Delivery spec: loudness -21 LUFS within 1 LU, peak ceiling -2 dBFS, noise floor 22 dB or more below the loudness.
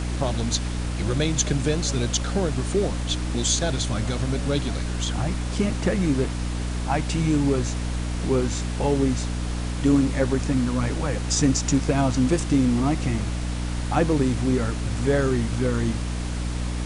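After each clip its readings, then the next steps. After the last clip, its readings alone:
hum 60 Hz; highest harmonic 300 Hz; hum level -25 dBFS; noise floor -28 dBFS; noise floor target -46 dBFS; loudness -24.0 LUFS; peak level -7.5 dBFS; loudness target -21.0 LUFS
-> de-hum 60 Hz, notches 5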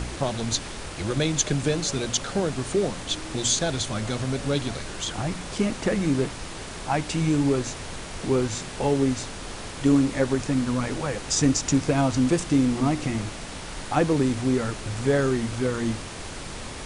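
hum not found; noise floor -37 dBFS; noise floor target -47 dBFS
-> noise print and reduce 10 dB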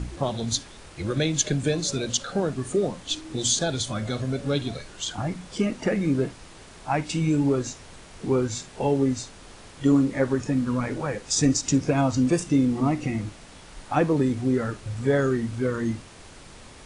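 noise floor -46 dBFS; noise floor target -48 dBFS
-> noise print and reduce 6 dB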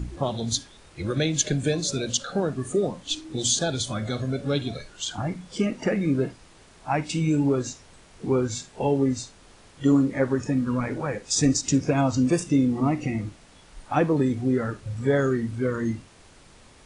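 noise floor -52 dBFS; loudness -25.5 LUFS; peak level -8.0 dBFS; loudness target -21.0 LUFS
-> trim +4.5 dB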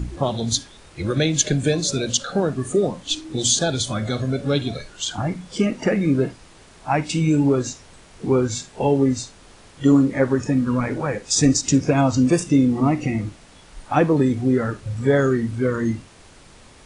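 loudness -21.0 LUFS; peak level -3.5 dBFS; noise floor -48 dBFS

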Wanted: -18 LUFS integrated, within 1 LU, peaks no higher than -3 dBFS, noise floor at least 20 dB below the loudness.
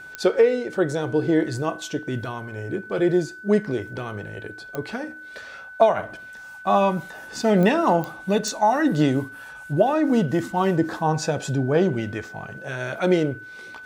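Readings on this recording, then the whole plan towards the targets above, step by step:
clicks found 5; steady tone 1.5 kHz; tone level -38 dBFS; loudness -23.0 LUFS; peak level -4.0 dBFS; loudness target -18.0 LUFS
-> de-click; band-stop 1.5 kHz, Q 30; trim +5 dB; peak limiter -3 dBFS

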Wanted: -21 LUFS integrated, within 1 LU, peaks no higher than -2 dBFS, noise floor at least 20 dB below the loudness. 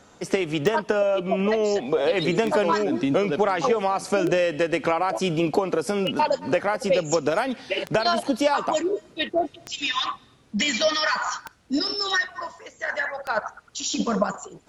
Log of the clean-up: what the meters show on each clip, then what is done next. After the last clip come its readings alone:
clicks found 8; loudness -24.0 LUFS; peak level -8.0 dBFS; loudness target -21.0 LUFS
-> de-click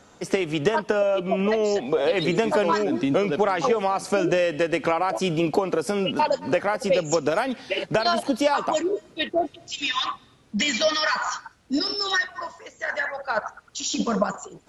clicks found 0; loudness -24.0 LUFS; peak level -8.0 dBFS; loudness target -21.0 LUFS
-> trim +3 dB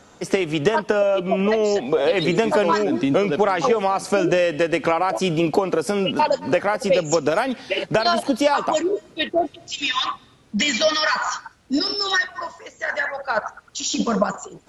loudness -21.0 LUFS; peak level -5.0 dBFS; noise floor -52 dBFS

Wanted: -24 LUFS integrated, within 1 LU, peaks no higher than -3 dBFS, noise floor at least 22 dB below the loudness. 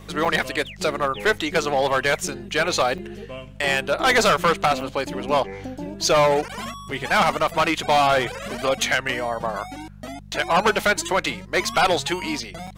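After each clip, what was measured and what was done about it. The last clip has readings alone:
dropouts 6; longest dropout 5.0 ms; hum 50 Hz; highest harmonic 200 Hz; hum level -41 dBFS; loudness -21.5 LUFS; peak level -8.0 dBFS; loudness target -24.0 LUFS
-> interpolate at 0.25/1.38/2.28/2.98/4.81/12.67 s, 5 ms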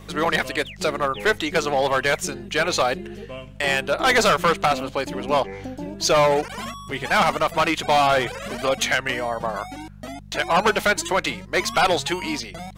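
dropouts 0; hum 50 Hz; highest harmonic 200 Hz; hum level -41 dBFS
-> de-hum 50 Hz, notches 4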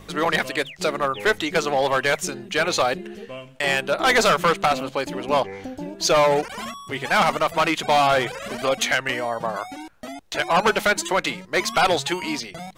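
hum not found; loudness -21.5 LUFS; peak level -8.5 dBFS; loudness target -24.0 LUFS
-> trim -2.5 dB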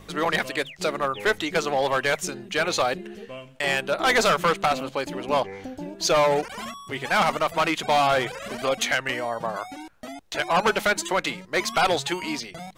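loudness -24.0 LUFS; peak level -11.0 dBFS; noise floor -47 dBFS

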